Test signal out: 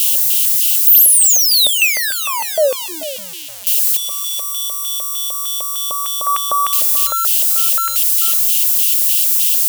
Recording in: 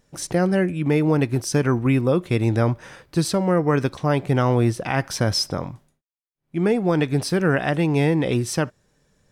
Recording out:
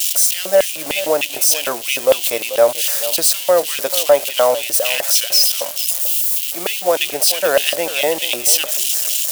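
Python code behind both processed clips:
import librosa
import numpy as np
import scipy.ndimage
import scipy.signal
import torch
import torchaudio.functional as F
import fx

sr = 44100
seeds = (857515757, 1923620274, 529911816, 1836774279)

p1 = x + 0.5 * 10.0 ** (-18.0 / 20.0) * np.diff(np.sign(x), prepend=np.sign(x[:1]))
p2 = fx.high_shelf(p1, sr, hz=3700.0, db=10.0)
p3 = fx.notch(p2, sr, hz=380.0, q=12.0)
p4 = fx.filter_lfo_highpass(p3, sr, shape='square', hz=3.3, low_hz=590.0, high_hz=2900.0, q=5.9)
p5 = np.clip(10.0 ** (3.0 / 20.0) * p4, -1.0, 1.0) / 10.0 ** (3.0 / 20.0)
y = p5 + fx.echo_single(p5, sr, ms=437, db=-14.0, dry=0)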